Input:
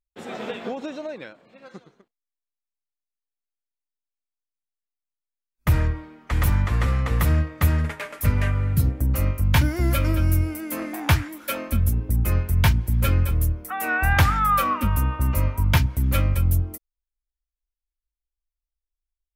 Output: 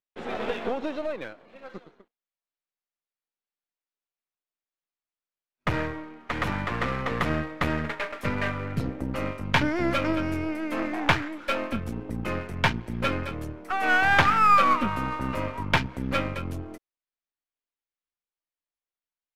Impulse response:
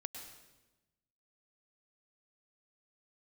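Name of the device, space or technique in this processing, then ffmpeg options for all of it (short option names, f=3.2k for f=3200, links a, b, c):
crystal radio: -af "highpass=230,lowpass=3.3k,aeval=exprs='if(lt(val(0),0),0.447*val(0),val(0))':c=same,volume=5dB"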